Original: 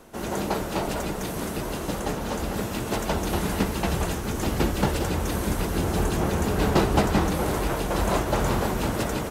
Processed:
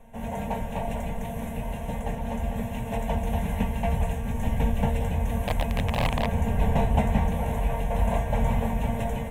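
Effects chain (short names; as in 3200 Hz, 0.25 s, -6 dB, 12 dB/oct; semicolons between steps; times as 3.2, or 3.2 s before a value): tilt -2 dB/oct; resonator 230 Hz, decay 0.25 s, harmonics all, mix 80%; 5.37–6.26 wrapped overs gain 22 dB; fixed phaser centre 1300 Hz, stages 6; slew limiter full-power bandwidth 97 Hz; gain +7.5 dB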